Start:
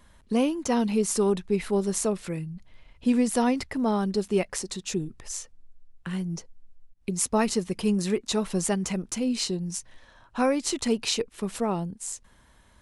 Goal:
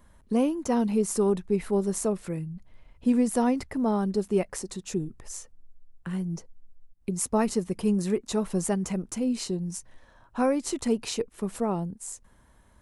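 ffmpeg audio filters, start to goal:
-af "equalizer=f=3.6k:w=0.58:g=-8.5"

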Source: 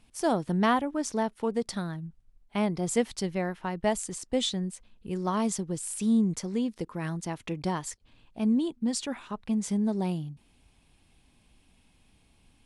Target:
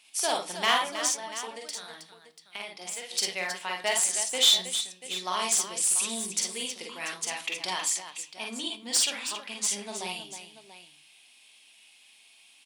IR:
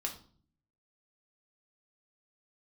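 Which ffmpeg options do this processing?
-filter_complex "[0:a]highshelf=f=1.9k:t=q:w=1.5:g=8,aeval=exprs='clip(val(0),-1,0.0891)':c=same,highpass=770,asplit=2[a][b];[1:a]atrim=start_sample=2205[c];[b][c]afir=irnorm=-1:irlink=0,volume=-4.5dB[d];[a][d]amix=inputs=2:normalize=0,asplit=3[e][f][g];[e]afade=t=out:st=1.1:d=0.02[h];[f]acompressor=threshold=-38dB:ratio=3,afade=t=in:st=1.1:d=0.02,afade=t=out:st=3.11:d=0.02[i];[g]afade=t=in:st=3.11:d=0.02[j];[h][i][j]amix=inputs=3:normalize=0,asplit=2[k][l];[l]aecho=0:1:44|54|318|688:0.596|0.596|0.335|0.211[m];[k][m]amix=inputs=2:normalize=0,volume=-2.5dB"

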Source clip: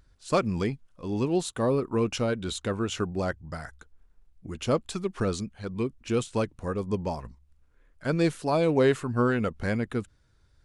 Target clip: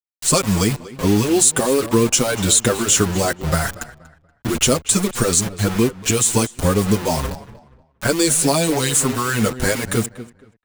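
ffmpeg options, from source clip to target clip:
-filter_complex "[0:a]adynamicequalizer=threshold=0.00251:dfrequency=8900:dqfactor=0.74:tfrequency=8900:tqfactor=0.74:attack=5:release=100:ratio=0.375:range=3:mode=boostabove:tftype=bell,acrossover=split=3600[a][b];[a]acompressor=threshold=-33dB:ratio=10[c];[c][b]amix=inputs=2:normalize=0,aexciter=amount=3:drive=2.7:freq=6.6k,asplit=2[d][e];[e]asoftclip=type=tanh:threshold=-29.5dB,volume=-8.5dB[f];[d][f]amix=inputs=2:normalize=0,acrusher=bits=6:mix=0:aa=0.000001,asplit=2[g][h];[h]adelay=238,lowpass=f=2.9k:p=1,volume=-16dB,asplit=2[i][j];[j]adelay=238,lowpass=f=2.9k:p=1,volume=0.29,asplit=2[k][l];[l]adelay=238,lowpass=f=2.9k:p=1,volume=0.29[m];[g][i][k][m]amix=inputs=4:normalize=0,alimiter=level_in=19dB:limit=-1dB:release=50:level=0:latency=1,asplit=2[n][o];[o]adelay=6.6,afreqshift=1.6[p];[n][p]amix=inputs=2:normalize=1"

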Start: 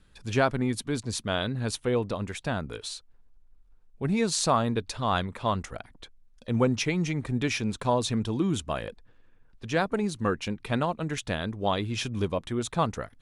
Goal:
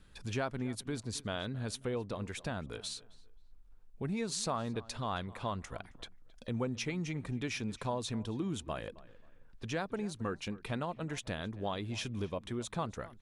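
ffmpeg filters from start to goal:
-filter_complex "[0:a]acompressor=threshold=-41dB:ratio=2,asplit=2[a][b];[b]adelay=268,lowpass=f=2.6k:p=1,volume=-19dB,asplit=2[c][d];[d]adelay=268,lowpass=f=2.6k:p=1,volume=0.29[e];[a][c][e]amix=inputs=3:normalize=0"

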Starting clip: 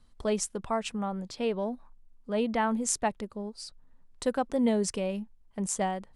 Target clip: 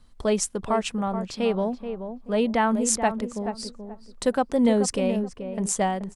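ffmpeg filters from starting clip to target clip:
-filter_complex "[0:a]asplit=2[a][b];[b]adelay=430,lowpass=f=1.2k:p=1,volume=-8dB,asplit=2[c][d];[d]adelay=430,lowpass=f=1.2k:p=1,volume=0.26,asplit=2[e][f];[f]adelay=430,lowpass=f=1.2k:p=1,volume=0.26[g];[a][c][e][g]amix=inputs=4:normalize=0,volume=5.5dB"

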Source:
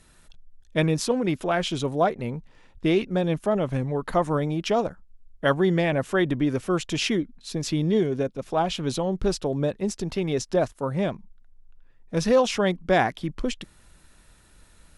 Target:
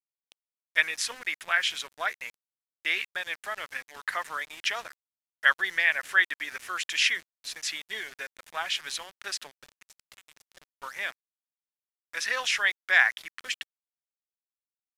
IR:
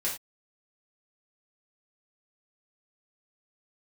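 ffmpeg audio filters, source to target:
-filter_complex "[0:a]highpass=f=1.8k:t=q:w=3.2,asettb=1/sr,asplit=3[a][b][c];[a]atrim=end=9.494[d];[b]atrim=start=9.49:end=10.82,asetpts=PTS-STARTPTS,afade=t=in:d=0.004:c=qsin,afade=t=out:st=1.326:d=0.004:c=qsin,acompressor=threshold=-47dB:ratio=16[e];[c]atrim=start=10.816[f];[d][e]acrossfade=d=0.004:c1=hsin:c2=qsin[g];[g][f]acrossfade=d=0.004:c1=qsin:c2=hsin,aeval=exprs='val(0)*gte(abs(val(0)),0.00794)':c=same,aresample=32000,aresample=44100"

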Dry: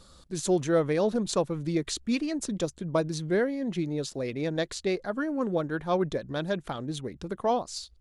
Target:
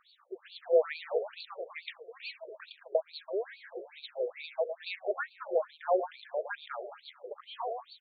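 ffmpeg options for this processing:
-filter_complex "[0:a]aecho=1:1:111|222|333|444|555|666|777:0.355|0.209|0.124|0.0729|0.043|0.0254|0.015,asplit=3[a][b][c];[a]afade=t=out:st=2.96:d=0.02[d];[b]acompressor=threshold=-28dB:ratio=6,afade=t=in:st=2.96:d=0.02,afade=t=out:st=3.51:d=0.02[e];[c]afade=t=in:st=3.51:d=0.02[f];[d][e][f]amix=inputs=3:normalize=0,afftfilt=real='re*between(b*sr/1024,510*pow(3300/510,0.5+0.5*sin(2*PI*2.3*pts/sr))/1.41,510*pow(3300/510,0.5+0.5*sin(2*PI*2.3*pts/sr))*1.41)':imag='im*between(b*sr/1024,510*pow(3300/510,0.5+0.5*sin(2*PI*2.3*pts/sr))/1.41,510*pow(3300/510,0.5+0.5*sin(2*PI*2.3*pts/sr))*1.41)':win_size=1024:overlap=0.75,volume=1.5dB"

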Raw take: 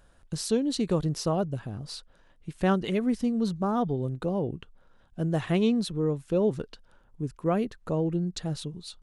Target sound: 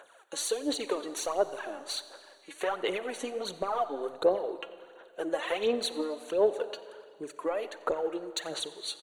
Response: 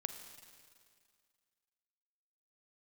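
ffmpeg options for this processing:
-filter_complex "[0:a]highpass=f=450:w=0.5412,highpass=f=450:w=1.3066,acompressor=threshold=-35dB:ratio=6,asoftclip=type=tanh:threshold=-27dB,aphaser=in_gain=1:out_gain=1:delay=3.6:decay=0.7:speed=1.4:type=sinusoidal,asuperstop=centerf=5100:order=8:qfactor=4.5,asplit=5[a][b][c][d][e];[b]adelay=89,afreqshift=130,volume=-23dB[f];[c]adelay=178,afreqshift=260,volume=-28.2dB[g];[d]adelay=267,afreqshift=390,volume=-33.4dB[h];[e]adelay=356,afreqshift=520,volume=-38.6dB[i];[a][f][g][h][i]amix=inputs=5:normalize=0,asplit=2[j][k];[1:a]atrim=start_sample=2205,highshelf=f=5.7k:g=-9[l];[k][l]afir=irnorm=-1:irlink=0,volume=3dB[m];[j][m]amix=inputs=2:normalize=0"

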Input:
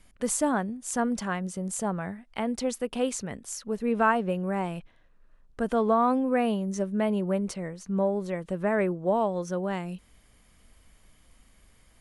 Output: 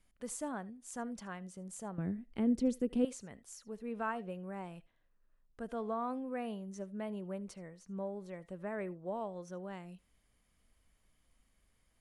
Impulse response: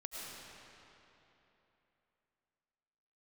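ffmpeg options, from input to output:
-filter_complex "[0:a]asettb=1/sr,asplit=3[a][b][c];[a]atrim=end=1.984[d];[b]atrim=start=1.98:end=3.05,asetpts=PTS-STARTPTS,afade=t=in:d=0.004:c=qsin,afade=t=out:st=1.066:d=0.004:c=qsin,lowshelf=f=520:t=q:w=1.5:g=13[e];[c]atrim=start=3.046[f];[d][e]acrossfade=d=0.004:c1=hsin:c2=qsin[g];[g][f]acrossfade=d=0.004:c1=qsin:c2=hsin[h];[1:a]atrim=start_sample=2205,atrim=end_sample=3528[i];[h][i]afir=irnorm=-1:irlink=0,volume=-8.5dB"

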